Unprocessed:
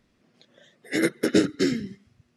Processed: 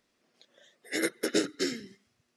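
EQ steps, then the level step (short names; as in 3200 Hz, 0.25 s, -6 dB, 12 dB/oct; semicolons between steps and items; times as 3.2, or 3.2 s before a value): tone controls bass -14 dB, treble +5 dB; -4.5 dB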